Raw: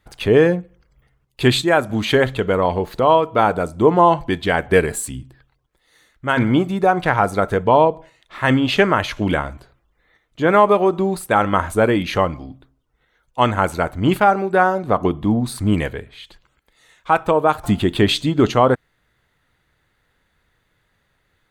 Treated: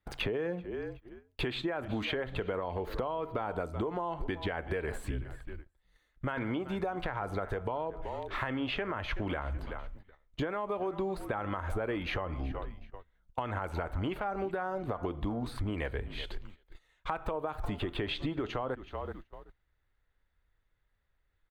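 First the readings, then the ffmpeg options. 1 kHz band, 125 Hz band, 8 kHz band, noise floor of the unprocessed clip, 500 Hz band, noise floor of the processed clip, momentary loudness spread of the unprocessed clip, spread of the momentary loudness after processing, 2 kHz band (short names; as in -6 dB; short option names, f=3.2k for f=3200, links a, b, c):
-19.5 dB, -15.5 dB, under -25 dB, -67 dBFS, -18.5 dB, -76 dBFS, 7 LU, 10 LU, -16.5 dB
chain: -filter_complex "[0:a]acrossover=split=290|3300[a][b][c];[a]acompressor=threshold=-27dB:ratio=4[d];[b]acompressor=threshold=-14dB:ratio=4[e];[c]acompressor=threshold=-45dB:ratio=4[f];[d][e][f]amix=inputs=3:normalize=0,asplit=2[g][h];[h]asplit=2[i][j];[i]adelay=376,afreqshift=-43,volume=-21dB[k];[j]adelay=752,afreqshift=-86,volume=-31.2dB[l];[k][l]amix=inputs=2:normalize=0[m];[g][m]amix=inputs=2:normalize=0,asubboost=boost=5.5:cutoff=64,agate=range=-18dB:threshold=-45dB:ratio=16:detection=peak,equalizer=f=8.6k:t=o:w=1.6:g=-8.5,alimiter=limit=-14.5dB:level=0:latency=1:release=143,acompressor=threshold=-33dB:ratio=6,volume=1.5dB"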